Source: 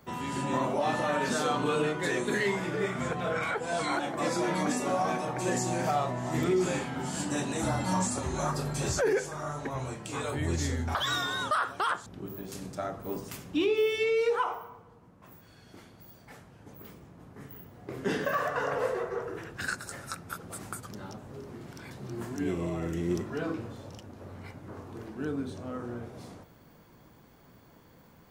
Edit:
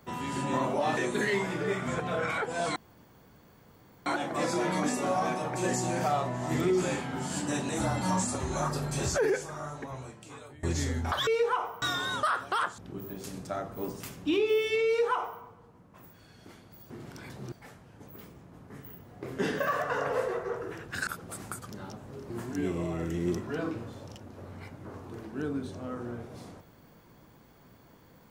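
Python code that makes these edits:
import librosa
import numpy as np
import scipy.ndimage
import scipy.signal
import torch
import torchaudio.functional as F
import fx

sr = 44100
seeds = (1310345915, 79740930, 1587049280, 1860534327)

y = fx.edit(x, sr, fx.cut(start_s=0.97, length_s=1.13),
    fx.insert_room_tone(at_s=3.89, length_s=1.3),
    fx.fade_out_to(start_s=9.06, length_s=1.4, floor_db=-23.0),
    fx.duplicate(start_s=14.14, length_s=0.55, to_s=11.1),
    fx.cut(start_s=19.73, length_s=0.55),
    fx.move(start_s=21.51, length_s=0.62, to_s=16.18), tone=tone)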